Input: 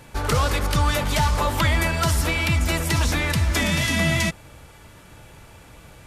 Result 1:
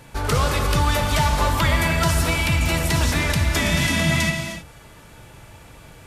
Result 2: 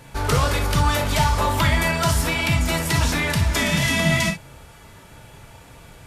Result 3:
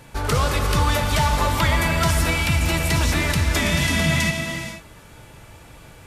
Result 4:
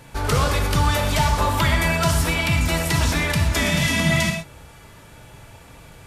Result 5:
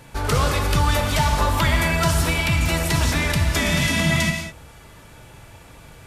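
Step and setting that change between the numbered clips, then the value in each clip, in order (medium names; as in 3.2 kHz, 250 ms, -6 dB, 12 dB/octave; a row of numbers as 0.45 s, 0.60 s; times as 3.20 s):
gated-style reverb, gate: 340 ms, 80 ms, 520 ms, 150 ms, 230 ms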